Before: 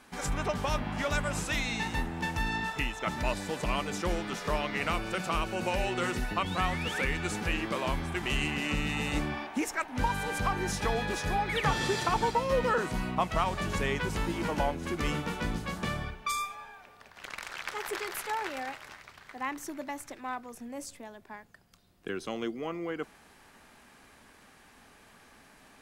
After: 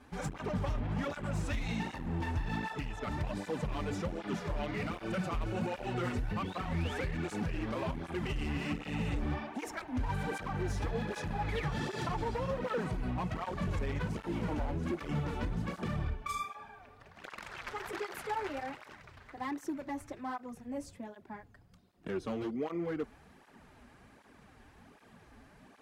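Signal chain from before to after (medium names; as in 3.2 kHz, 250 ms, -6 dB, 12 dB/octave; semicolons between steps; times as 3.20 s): tilt EQ -2.5 dB/octave; peak limiter -21.5 dBFS, peak gain reduction 11.5 dB; overload inside the chain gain 27 dB; cancelling through-zero flanger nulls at 1.3 Hz, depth 6.4 ms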